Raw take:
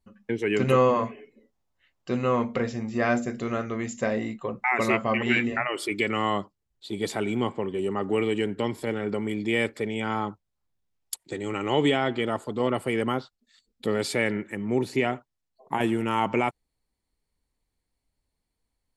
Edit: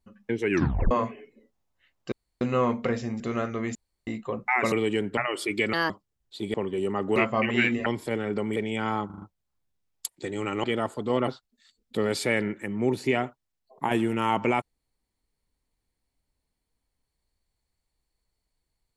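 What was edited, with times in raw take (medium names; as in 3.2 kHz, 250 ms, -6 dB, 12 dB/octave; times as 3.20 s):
0.50 s: tape stop 0.41 s
2.12 s: insert room tone 0.29 s
2.91–3.36 s: delete
3.91–4.23 s: room tone
4.88–5.58 s: swap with 8.17–8.62 s
6.14–6.40 s: speed 154%
7.04–7.55 s: delete
9.32–9.80 s: delete
10.30 s: stutter 0.04 s, 5 plays
11.72–12.14 s: delete
12.78–13.17 s: delete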